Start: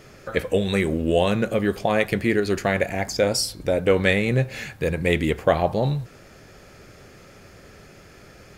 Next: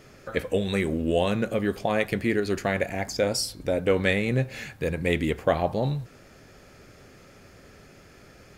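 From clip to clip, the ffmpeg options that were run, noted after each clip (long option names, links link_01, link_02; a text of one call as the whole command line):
ffmpeg -i in.wav -af "equalizer=frequency=260:width=6.9:gain=4,volume=-4dB" out.wav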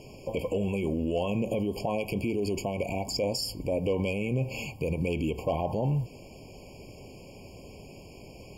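ffmpeg -i in.wav -af "volume=14dB,asoftclip=hard,volume=-14dB,alimiter=level_in=0.5dB:limit=-24dB:level=0:latency=1:release=68,volume=-0.5dB,afftfilt=real='re*eq(mod(floor(b*sr/1024/1100),2),0)':imag='im*eq(mod(floor(b*sr/1024/1100),2),0)':win_size=1024:overlap=0.75,volume=4.5dB" out.wav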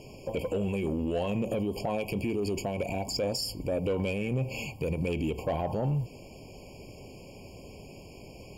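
ffmpeg -i in.wav -af "asoftclip=type=tanh:threshold=-20.5dB" out.wav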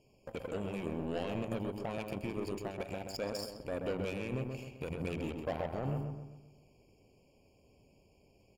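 ffmpeg -i in.wav -filter_complex "[0:a]aeval=exprs='0.0841*(cos(1*acos(clip(val(0)/0.0841,-1,1)))-cos(1*PI/2))+0.0237*(cos(3*acos(clip(val(0)/0.0841,-1,1)))-cos(3*PI/2))':channel_layout=same,asplit=2[link_01][link_02];[link_02]adelay=130,lowpass=frequency=1800:poles=1,volume=-4dB,asplit=2[link_03][link_04];[link_04]adelay=130,lowpass=frequency=1800:poles=1,volume=0.48,asplit=2[link_05][link_06];[link_06]adelay=130,lowpass=frequency=1800:poles=1,volume=0.48,asplit=2[link_07][link_08];[link_08]adelay=130,lowpass=frequency=1800:poles=1,volume=0.48,asplit=2[link_09][link_10];[link_10]adelay=130,lowpass=frequency=1800:poles=1,volume=0.48,asplit=2[link_11][link_12];[link_12]adelay=130,lowpass=frequency=1800:poles=1,volume=0.48[link_13];[link_01][link_03][link_05][link_07][link_09][link_11][link_13]amix=inputs=7:normalize=0,volume=-4.5dB" out.wav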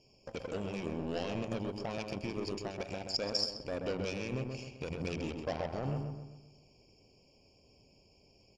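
ffmpeg -i in.wav -af "lowpass=frequency=5600:width_type=q:width=5.6" out.wav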